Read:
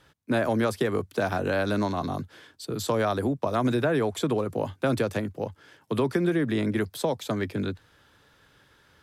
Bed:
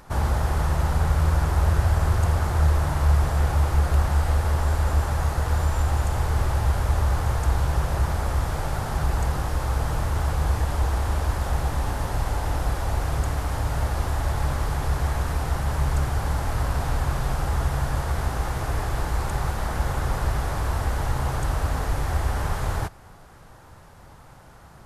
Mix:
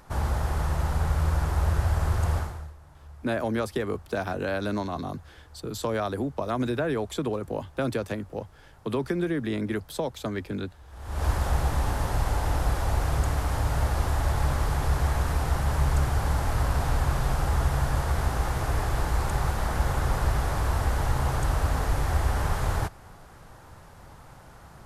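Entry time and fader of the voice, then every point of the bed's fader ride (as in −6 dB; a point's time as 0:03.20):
2.95 s, −3.0 dB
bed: 0:02.38 −4 dB
0:02.76 −28 dB
0:10.84 −28 dB
0:11.25 −0.5 dB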